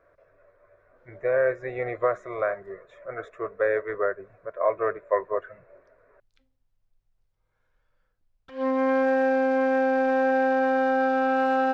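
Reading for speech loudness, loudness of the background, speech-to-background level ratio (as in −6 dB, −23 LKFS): −28.0 LKFS, −23.0 LKFS, −5.0 dB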